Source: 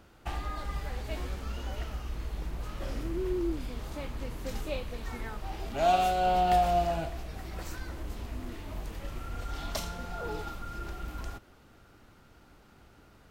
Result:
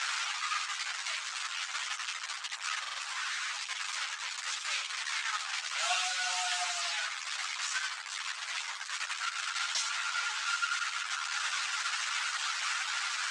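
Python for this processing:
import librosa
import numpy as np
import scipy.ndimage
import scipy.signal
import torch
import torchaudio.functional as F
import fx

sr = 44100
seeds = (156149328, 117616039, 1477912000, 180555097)

p1 = fx.delta_mod(x, sr, bps=64000, step_db=-27.0)
p2 = fx.quant_companded(p1, sr, bits=4)
p3 = p1 + F.gain(torch.from_numpy(p2), -4.5).numpy()
p4 = scipy.signal.sosfilt(scipy.signal.butter(6, 8100.0, 'lowpass', fs=sr, output='sos'), p3)
p5 = fx.dereverb_blind(p4, sr, rt60_s=0.68)
p6 = scipy.signal.sosfilt(scipy.signal.cheby2(4, 70, 270.0, 'highpass', fs=sr, output='sos'), p5)
p7 = p6 + fx.echo_single(p6, sr, ms=88, db=-9.5, dry=0)
p8 = fx.buffer_glitch(p7, sr, at_s=(2.79,), block=2048, repeats=3)
p9 = fx.ensemble(p8, sr)
y = F.gain(torch.from_numpy(p9), 4.5).numpy()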